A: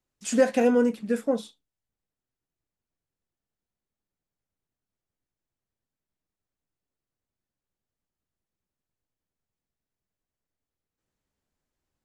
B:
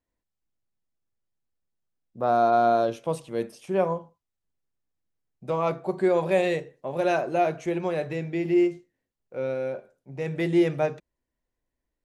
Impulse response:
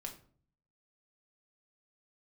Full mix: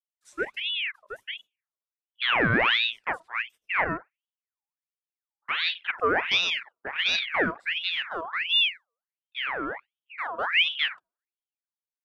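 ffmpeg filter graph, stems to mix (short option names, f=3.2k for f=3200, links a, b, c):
-filter_complex "[0:a]highshelf=f=9.1k:g=8.5,acrossover=split=440[a][b];[a]aeval=exprs='val(0)*(1-1/2+1/2*cos(2*PI*1.3*n/s))':c=same[c];[b]aeval=exprs='val(0)*(1-1/2-1/2*cos(2*PI*1.3*n/s))':c=same[d];[c][d]amix=inputs=2:normalize=0,volume=-4dB,asplit=2[e][f];[f]volume=-12.5dB[g];[1:a]agate=range=-18dB:threshold=-41dB:ratio=16:detection=peak,volume=0.5dB,asplit=2[h][i];[i]volume=-23.5dB[j];[2:a]atrim=start_sample=2205[k];[g][j]amix=inputs=2:normalize=0[l];[l][k]afir=irnorm=-1:irlink=0[m];[e][h][m]amix=inputs=3:normalize=0,afwtdn=0.0316,aeval=exprs='val(0)*sin(2*PI*2000*n/s+2000*0.6/1.4*sin(2*PI*1.4*n/s))':c=same"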